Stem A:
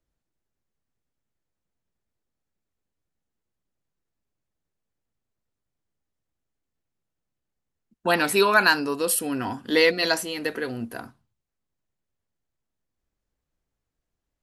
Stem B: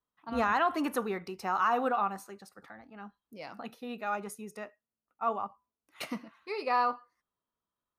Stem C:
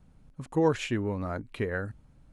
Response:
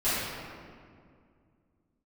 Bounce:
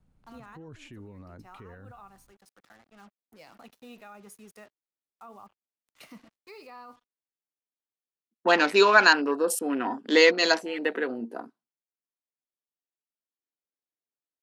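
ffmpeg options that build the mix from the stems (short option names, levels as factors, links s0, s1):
-filter_complex "[0:a]lowpass=8200,afwtdn=0.0178,highpass=f=240:w=0.5412,highpass=f=240:w=1.3066,adelay=400,volume=1.12[s0];[1:a]highshelf=f=2500:g=5,acrusher=bits=7:mix=0:aa=0.5,volume=0.422[s1];[2:a]volume=0.355,asplit=2[s2][s3];[s3]apad=whole_len=352144[s4];[s1][s4]sidechaincompress=threshold=0.00316:ratio=6:attack=25:release=860[s5];[s5][s2]amix=inputs=2:normalize=0,acrossover=split=300[s6][s7];[s7]acompressor=threshold=0.00501:ratio=2.5[s8];[s6][s8]amix=inputs=2:normalize=0,alimiter=level_in=5.01:limit=0.0631:level=0:latency=1:release=23,volume=0.2,volume=1[s9];[s0][s9]amix=inputs=2:normalize=0"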